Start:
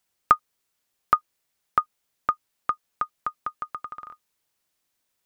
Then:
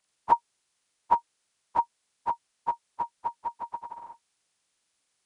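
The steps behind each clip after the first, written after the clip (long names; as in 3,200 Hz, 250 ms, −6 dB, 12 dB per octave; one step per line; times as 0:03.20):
partials spread apart or drawn together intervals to 83%
level +1.5 dB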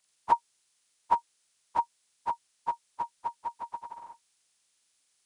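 high-shelf EQ 2,400 Hz +9 dB
level −3.5 dB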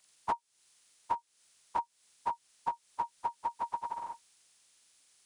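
downward compressor 10 to 1, threshold −36 dBFS, peak gain reduction 19 dB
level +6 dB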